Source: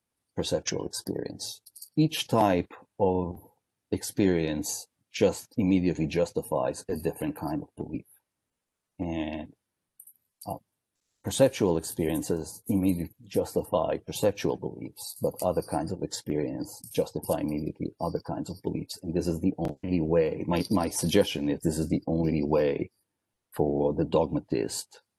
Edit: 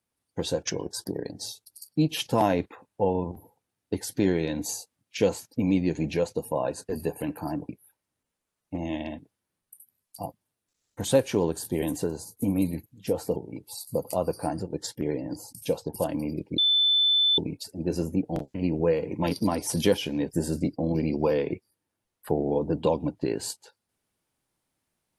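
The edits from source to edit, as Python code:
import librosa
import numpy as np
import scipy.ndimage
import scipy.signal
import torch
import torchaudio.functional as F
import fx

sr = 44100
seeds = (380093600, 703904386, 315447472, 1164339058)

y = fx.edit(x, sr, fx.cut(start_s=7.69, length_s=0.27),
    fx.cut(start_s=13.63, length_s=1.02),
    fx.bleep(start_s=17.87, length_s=0.8, hz=3520.0, db=-18.5), tone=tone)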